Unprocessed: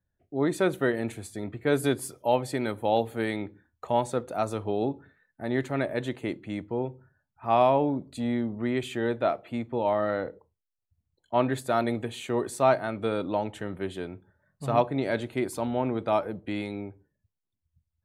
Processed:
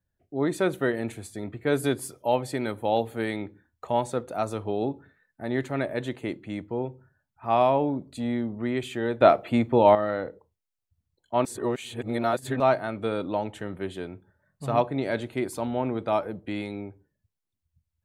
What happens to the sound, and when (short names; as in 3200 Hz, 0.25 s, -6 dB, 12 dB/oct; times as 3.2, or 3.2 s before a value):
9.21–9.95 gain +9 dB
11.45–12.6 reverse